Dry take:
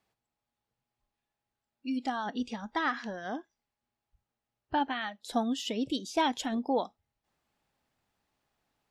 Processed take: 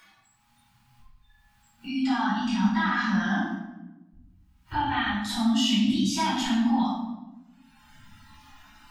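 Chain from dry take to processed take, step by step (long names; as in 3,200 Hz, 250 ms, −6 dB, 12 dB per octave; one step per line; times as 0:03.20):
noise gate with hold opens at −58 dBFS
harmonic and percussive parts rebalanced percussive −7 dB
Chebyshev band-stop filter 220–960 Hz, order 2
noise reduction from a noise print of the clip's start 21 dB
upward compression, threshold −44 dBFS
brickwall limiter −37 dBFS, peak gain reduction 17 dB
rectangular room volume 430 cubic metres, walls mixed, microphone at 4.6 metres
level +8 dB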